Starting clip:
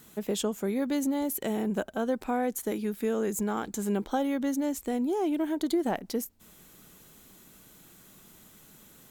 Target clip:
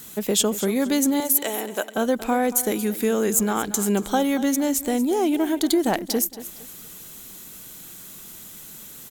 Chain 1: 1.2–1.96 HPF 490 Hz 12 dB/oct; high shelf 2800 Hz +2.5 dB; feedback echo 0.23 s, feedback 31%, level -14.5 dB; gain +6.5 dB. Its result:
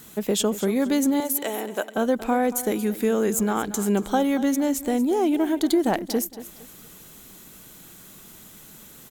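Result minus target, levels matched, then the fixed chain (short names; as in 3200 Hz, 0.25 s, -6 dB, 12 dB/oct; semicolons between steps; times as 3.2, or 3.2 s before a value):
4000 Hz band -2.5 dB
1.2–1.96 HPF 490 Hz 12 dB/oct; high shelf 2800 Hz +9 dB; feedback echo 0.23 s, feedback 31%, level -14.5 dB; gain +6.5 dB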